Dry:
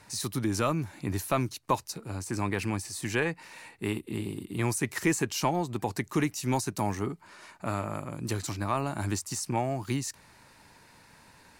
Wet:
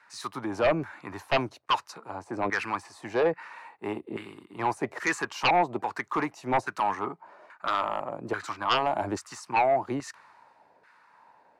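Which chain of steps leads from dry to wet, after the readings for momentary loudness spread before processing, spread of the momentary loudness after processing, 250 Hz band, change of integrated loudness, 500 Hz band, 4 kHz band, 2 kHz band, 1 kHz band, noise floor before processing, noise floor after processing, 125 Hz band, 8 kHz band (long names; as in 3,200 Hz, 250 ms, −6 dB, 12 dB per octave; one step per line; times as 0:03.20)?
8 LU, 14 LU, −3.5 dB, +2.0 dB, +4.5 dB, +3.5 dB, +4.5 dB, +6.5 dB, −58 dBFS, −63 dBFS, −10.0 dB, −10.5 dB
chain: auto-filter band-pass saw down 1.2 Hz 560–1,500 Hz
sine wavefolder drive 10 dB, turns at −19 dBFS
multiband upward and downward expander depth 40%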